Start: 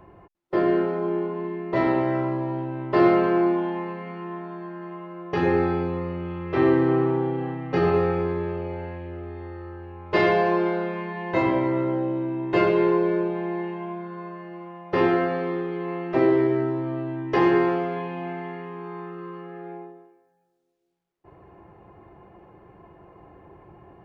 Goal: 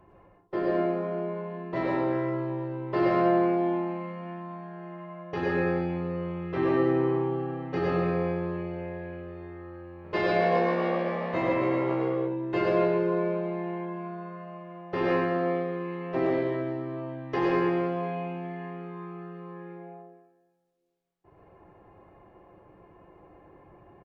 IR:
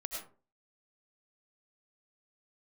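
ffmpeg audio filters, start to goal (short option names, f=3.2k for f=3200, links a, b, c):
-filter_complex "[0:a]asplit=3[a][b][c];[a]afade=t=out:st=10.03:d=0.02[d];[b]asplit=7[e][f][g][h][i][j][k];[f]adelay=268,afreqshift=65,volume=-7dB[l];[g]adelay=536,afreqshift=130,volume=-12.5dB[m];[h]adelay=804,afreqshift=195,volume=-18dB[n];[i]adelay=1072,afreqshift=260,volume=-23.5dB[o];[j]adelay=1340,afreqshift=325,volume=-29.1dB[p];[k]adelay=1608,afreqshift=390,volume=-34.6dB[q];[e][l][m][n][o][p][q]amix=inputs=7:normalize=0,afade=t=in:st=10.03:d=0.02,afade=t=out:st=12.14:d=0.02[r];[c]afade=t=in:st=12.14:d=0.02[s];[d][r][s]amix=inputs=3:normalize=0[t];[1:a]atrim=start_sample=2205,asetrate=38808,aresample=44100[u];[t][u]afir=irnorm=-1:irlink=0,volume=-5dB"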